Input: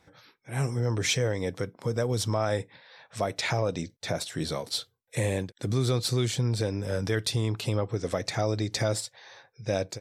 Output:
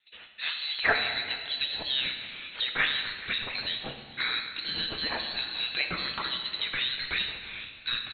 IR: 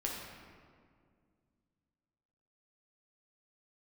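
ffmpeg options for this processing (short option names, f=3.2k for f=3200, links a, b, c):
-filter_complex "[0:a]highpass=630,agate=range=-18dB:threshold=-60dB:ratio=16:detection=peak,lowpass=f=3.1k:t=q:w=0.5098,lowpass=f=3.1k:t=q:w=0.6013,lowpass=f=3.1k:t=q:w=0.9,lowpass=f=3.1k:t=q:w=2.563,afreqshift=-3700,acrossover=split=1900[a][b];[b]acompressor=threshold=-45dB:ratio=12[c];[a][c]amix=inputs=2:normalize=0,asetrate=54243,aresample=44100,asplit=4[d][e][f][g];[e]adelay=427,afreqshift=49,volume=-19.5dB[h];[f]adelay=854,afreqshift=98,volume=-28.6dB[i];[g]adelay=1281,afreqshift=147,volume=-37.7dB[j];[d][h][i][j]amix=inputs=4:normalize=0,asplit=2[k][l];[1:a]atrim=start_sample=2205,asetrate=48510,aresample=44100,highshelf=f=2.8k:g=11.5[m];[l][m]afir=irnorm=-1:irlink=0,volume=-2dB[n];[k][n]amix=inputs=2:normalize=0,acontrast=51,volume=-2dB"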